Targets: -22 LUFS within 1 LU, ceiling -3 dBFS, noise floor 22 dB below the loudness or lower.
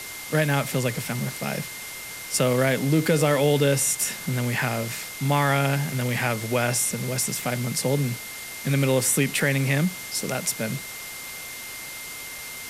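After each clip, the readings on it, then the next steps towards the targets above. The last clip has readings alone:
steady tone 2.1 kHz; tone level -39 dBFS; noise floor -37 dBFS; noise floor target -47 dBFS; loudness -24.5 LUFS; peak level -9.0 dBFS; loudness target -22.0 LUFS
-> band-stop 2.1 kHz, Q 30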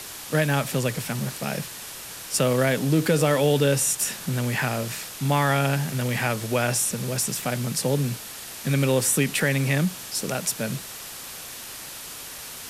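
steady tone not found; noise floor -38 dBFS; noise floor target -46 dBFS
-> noise reduction 8 dB, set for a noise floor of -38 dBFS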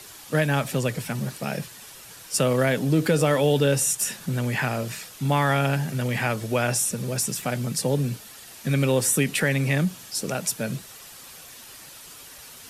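noise floor -45 dBFS; noise floor target -46 dBFS
-> noise reduction 6 dB, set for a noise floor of -45 dBFS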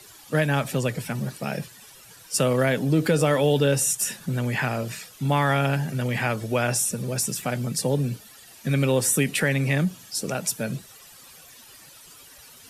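noise floor -49 dBFS; loudness -24.5 LUFS; peak level -9.5 dBFS; loudness target -22.0 LUFS
-> trim +2.5 dB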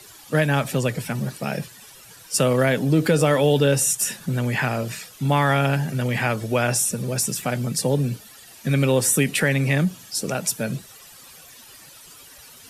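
loudness -22.0 LUFS; peak level -7.0 dBFS; noise floor -46 dBFS

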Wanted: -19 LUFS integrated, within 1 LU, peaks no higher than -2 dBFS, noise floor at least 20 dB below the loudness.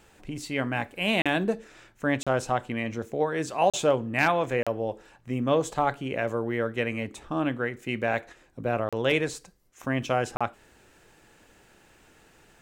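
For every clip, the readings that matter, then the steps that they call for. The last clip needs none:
dropouts 6; longest dropout 36 ms; loudness -28.0 LUFS; peak level -10.5 dBFS; loudness target -19.0 LUFS
-> interpolate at 1.22/2.23/3.70/4.63/8.89/10.37 s, 36 ms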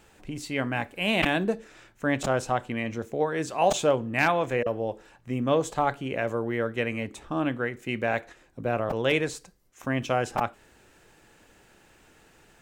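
dropouts 0; loudness -28.0 LUFS; peak level -9.5 dBFS; loudness target -19.0 LUFS
-> trim +9 dB; peak limiter -2 dBFS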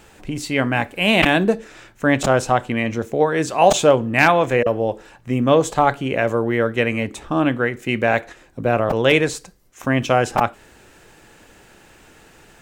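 loudness -19.0 LUFS; peak level -2.0 dBFS; noise floor -50 dBFS

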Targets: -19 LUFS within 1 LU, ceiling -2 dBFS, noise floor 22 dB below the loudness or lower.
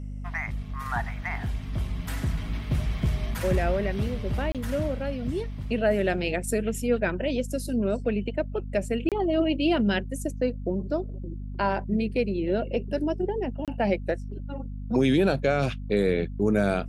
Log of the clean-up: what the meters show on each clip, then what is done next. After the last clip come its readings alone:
dropouts 3; longest dropout 27 ms; hum 50 Hz; highest harmonic 250 Hz; hum level -33 dBFS; loudness -27.5 LUFS; peak level -12.0 dBFS; loudness target -19.0 LUFS
-> interpolate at 4.52/9.09/13.65 s, 27 ms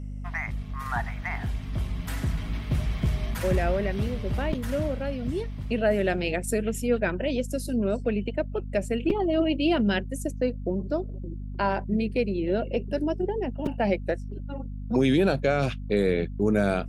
dropouts 0; hum 50 Hz; highest harmonic 250 Hz; hum level -33 dBFS
-> de-hum 50 Hz, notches 5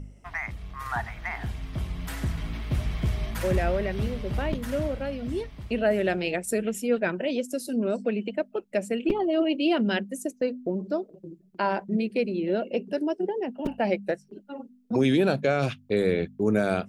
hum not found; loudness -28.0 LUFS; peak level -10.0 dBFS; loudness target -19.0 LUFS
-> trim +9 dB; peak limiter -2 dBFS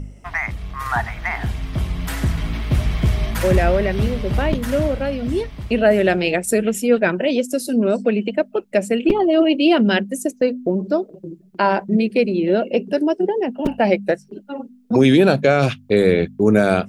loudness -19.0 LUFS; peak level -2.0 dBFS; noise floor -48 dBFS

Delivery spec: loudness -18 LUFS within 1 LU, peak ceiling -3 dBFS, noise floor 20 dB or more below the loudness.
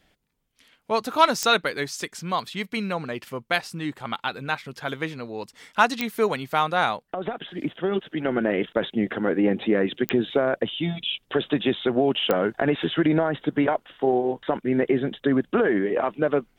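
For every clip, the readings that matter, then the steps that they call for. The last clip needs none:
clicks found 4; loudness -24.5 LUFS; peak level -4.5 dBFS; loudness target -18.0 LUFS
-> de-click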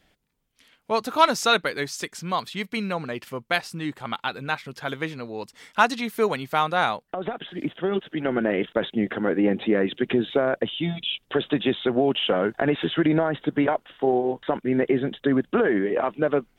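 clicks found 0; loudness -24.5 LUFS; peak level -4.5 dBFS; loudness target -18.0 LUFS
-> trim +6.5 dB; peak limiter -3 dBFS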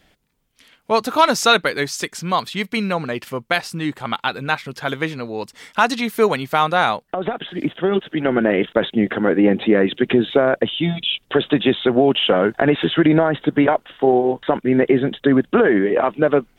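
loudness -18.5 LUFS; peak level -3.0 dBFS; noise floor -62 dBFS

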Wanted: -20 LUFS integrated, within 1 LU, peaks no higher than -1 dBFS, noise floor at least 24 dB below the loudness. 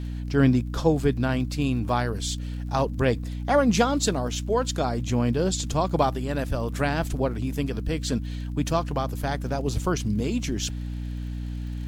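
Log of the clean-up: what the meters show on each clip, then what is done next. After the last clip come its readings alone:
tick rate 43 per s; hum 60 Hz; highest harmonic 300 Hz; hum level -29 dBFS; loudness -26.0 LUFS; peak level -8.0 dBFS; loudness target -20.0 LUFS
-> de-click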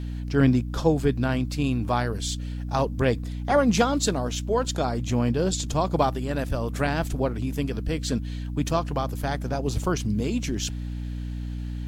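tick rate 0.42 per s; hum 60 Hz; highest harmonic 300 Hz; hum level -29 dBFS
-> de-hum 60 Hz, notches 5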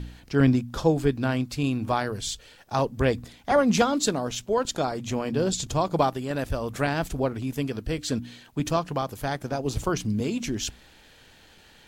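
hum not found; loudness -26.5 LUFS; peak level -8.0 dBFS; loudness target -20.0 LUFS
-> trim +6.5 dB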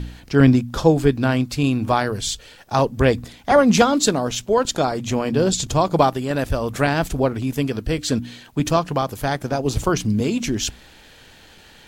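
loudness -20.0 LUFS; peak level -1.5 dBFS; noise floor -48 dBFS

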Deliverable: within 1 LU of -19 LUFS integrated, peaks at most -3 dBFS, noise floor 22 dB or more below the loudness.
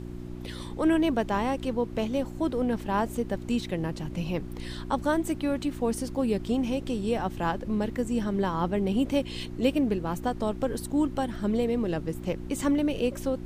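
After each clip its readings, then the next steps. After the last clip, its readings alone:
hum 60 Hz; highest harmonic 360 Hz; hum level -36 dBFS; noise floor -38 dBFS; noise floor target -51 dBFS; loudness -28.5 LUFS; peak level -11.5 dBFS; loudness target -19.0 LUFS
-> de-hum 60 Hz, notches 6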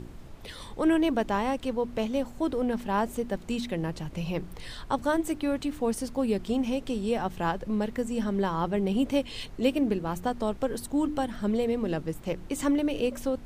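hum not found; noise floor -44 dBFS; noise floor target -51 dBFS
-> noise print and reduce 7 dB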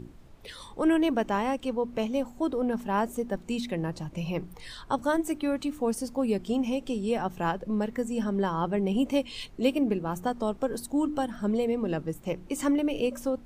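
noise floor -49 dBFS; noise floor target -51 dBFS
-> noise print and reduce 6 dB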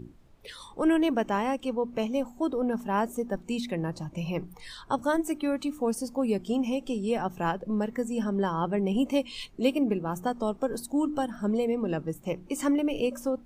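noise floor -52 dBFS; loudness -29.0 LUFS; peak level -12.0 dBFS; loudness target -19.0 LUFS
-> trim +10 dB; peak limiter -3 dBFS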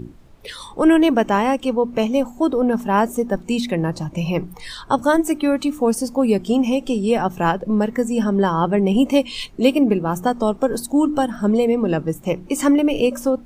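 loudness -19.0 LUFS; peak level -3.0 dBFS; noise floor -42 dBFS

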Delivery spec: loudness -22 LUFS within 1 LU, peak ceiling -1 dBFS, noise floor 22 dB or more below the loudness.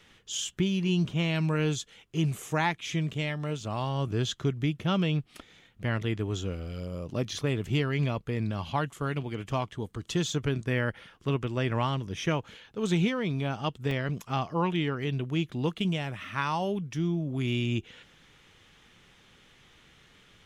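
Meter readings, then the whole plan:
dropouts 1; longest dropout 2.2 ms; loudness -30.5 LUFS; peak level -14.0 dBFS; loudness target -22.0 LUFS
-> interpolate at 13.91 s, 2.2 ms; trim +8.5 dB

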